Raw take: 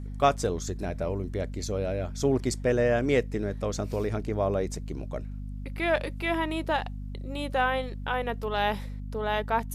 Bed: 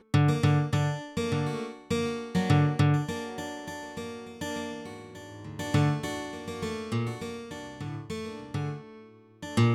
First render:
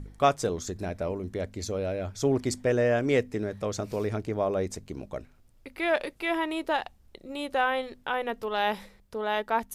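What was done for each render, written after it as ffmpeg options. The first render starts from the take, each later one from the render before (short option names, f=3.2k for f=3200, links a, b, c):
-af "bandreject=f=50:t=h:w=4,bandreject=f=100:t=h:w=4,bandreject=f=150:t=h:w=4,bandreject=f=200:t=h:w=4,bandreject=f=250:t=h:w=4"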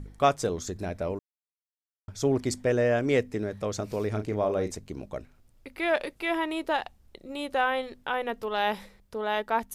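-filter_complex "[0:a]asettb=1/sr,asplit=3[a][b][c];[a]atrim=end=4.094[d];[b]atrim=start=4.09:end=4.75,asetpts=PTS-STARTPTS,afade=t=in:d=0.004:c=qsin,afade=t=out:st=0.656:d=0.004:c=qsin,asplit=2[e][f];[f]adelay=38,volume=-9dB[g];[e][g]amix=inputs=2:normalize=0,atrim=end_sample=29106[h];[c]atrim=start=4.746[i];[d][h]acrossfade=d=0.004:c1=hsin:c2=qsin[j];[j][i]acrossfade=d=0.004:c1=qsin:c2=hsin,asplit=3[k][l][m];[k]atrim=end=1.19,asetpts=PTS-STARTPTS,afade=t=out:st=1.186:d=0.004:c=hsin[n];[l]atrim=start=1.19:end=2.08,asetpts=PTS-STARTPTS,volume=0[o];[m]atrim=start=2.08,asetpts=PTS-STARTPTS,afade=t=in:d=0.004:c=hsin[p];[n][o][p]concat=n=3:v=0:a=1"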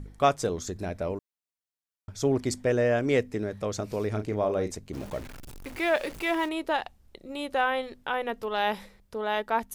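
-filter_complex "[0:a]asettb=1/sr,asplit=3[a][b][c];[a]atrim=end=4.934[d];[b]atrim=start=4.93:end=6.49,asetpts=PTS-STARTPTS,afade=t=in:d=0.004:c=qsin,afade=t=out:st=1.556:d=0.004:c=qsin,aeval=exprs='val(0)+0.5*0.0126*sgn(val(0))':c=same[e];[c]atrim=start=6.486[f];[d][e]acrossfade=d=0.004:c1=hsin:c2=qsin[g];[g][f]acrossfade=d=0.004:c1=qsin:c2=hsin"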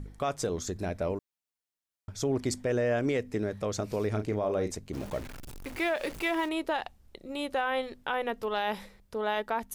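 -af "alimiter=limit=-20dB:level=0:latency=1:release=96"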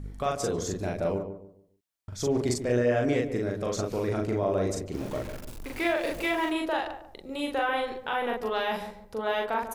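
-filter_complex "[0:a]asplit=2[a][b];[b]adelay=41,volume=-2dB[c];[a][c]amix=inputs=2:normalize=0,asplit=2[d][e];[e]adelay=144,lowpass=f=900:p=1,volume=-7.5dB,asplit=2[f][g];[g]adelay=144,lowpass=f=900:p=1,volume=0.33,asplit=2[h][i];[i]adelay=144,lowpass=f=900:p=1,volume=0.33,asplit=2[j][k];[k]adelay=144,lowpass=f=900:p=1,volume=0.33[l];[d][f][h][j][l]amix=inputs=5:normalize=0"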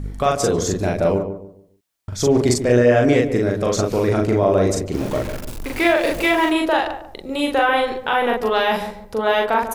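-af "volume=10.5dB"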